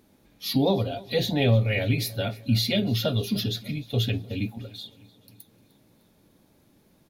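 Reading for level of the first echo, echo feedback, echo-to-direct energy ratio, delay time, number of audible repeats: -22.5 dB, 59%, -20.5 dB, 0.304 s, 3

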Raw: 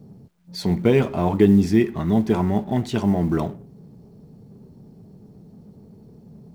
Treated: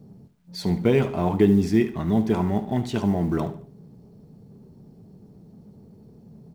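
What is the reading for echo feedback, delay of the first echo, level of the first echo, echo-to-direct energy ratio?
34%, 73 ms, -14.0 dB, -13.5 dB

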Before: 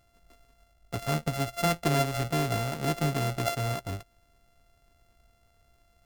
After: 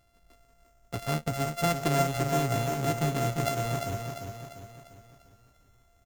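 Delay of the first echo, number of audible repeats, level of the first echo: 0.347 s, 5, -6.0 dB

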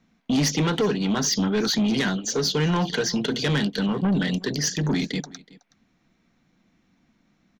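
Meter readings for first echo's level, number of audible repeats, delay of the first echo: -22.0 dB, 1, 0.372 s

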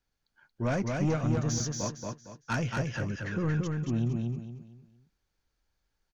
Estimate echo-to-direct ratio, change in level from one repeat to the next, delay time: -3.0 dB, -10.0 dB, 0.229 s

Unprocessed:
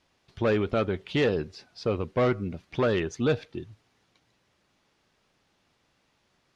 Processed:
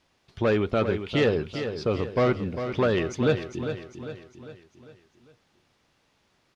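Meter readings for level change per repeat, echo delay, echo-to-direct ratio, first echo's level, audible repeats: -6.5 dB, 0.4 s, -8.0 dB, -9.0 dB, 5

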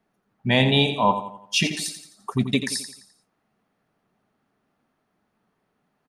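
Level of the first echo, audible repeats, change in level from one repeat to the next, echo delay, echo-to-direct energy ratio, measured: -10.0 dB, 4, -7.0 dB, 86 ms, -9.0 dB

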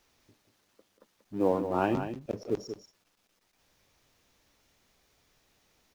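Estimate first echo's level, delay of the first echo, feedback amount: -9.0 dB, 0.186 s, no steady repeat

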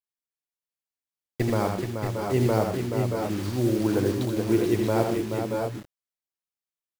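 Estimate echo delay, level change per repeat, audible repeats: 81 ms, no steady repeat, 4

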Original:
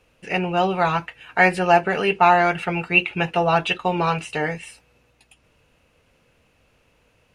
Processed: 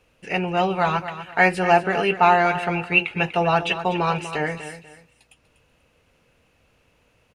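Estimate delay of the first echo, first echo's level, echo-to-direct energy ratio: 0.244 s, -12.0 dB, -11.5 dB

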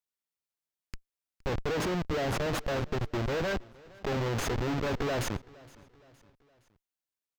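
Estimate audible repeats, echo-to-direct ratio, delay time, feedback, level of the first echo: 2, -22.0 dB, 0.466 s, 48%, -23.0 dB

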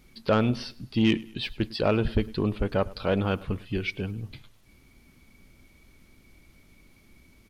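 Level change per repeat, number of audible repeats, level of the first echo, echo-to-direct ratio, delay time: -7.0 dB, 2, -22.0 dB, -21.0 dB, 0.103 s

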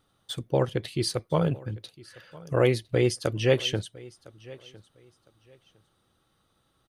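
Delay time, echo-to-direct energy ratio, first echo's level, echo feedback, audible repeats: 1.007 s, -21.5 dB, -21.5 dB, 22%, 2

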